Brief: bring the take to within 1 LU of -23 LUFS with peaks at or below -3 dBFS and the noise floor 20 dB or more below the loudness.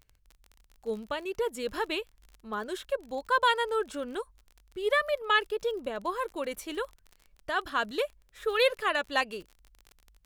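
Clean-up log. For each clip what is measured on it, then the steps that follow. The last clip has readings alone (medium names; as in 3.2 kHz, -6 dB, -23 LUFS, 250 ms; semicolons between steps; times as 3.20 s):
tick rate 35 per s; loudness -30.5 LUFS; peak level -11.0 dBFS; loudness target -23.0 LUFS
-> de-click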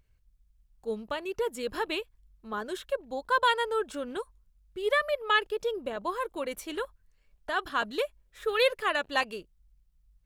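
tick rate 0.88 per s; loudness -30.5 LUFS; peak level -11.0 dBFS; loudness target -23.0 LUFS
-> trim +7.5 dB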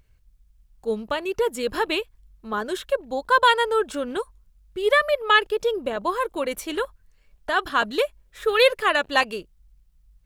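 loudness -23.0 LUFS; peak level -3.5 dBFS; noise floor -60 dBFS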